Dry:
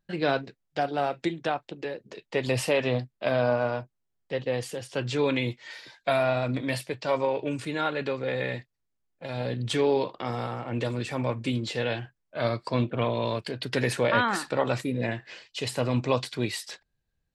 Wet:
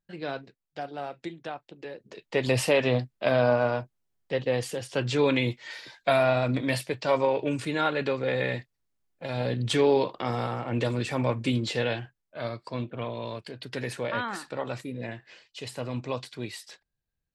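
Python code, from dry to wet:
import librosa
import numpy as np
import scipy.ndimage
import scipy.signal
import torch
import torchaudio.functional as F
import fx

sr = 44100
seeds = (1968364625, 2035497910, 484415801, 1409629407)

y = fx.gain(x, sr, db=fx.line((1.7, -8.5), (2.42, 2.0), (11.76, 2.0), (12.51, -7.0)))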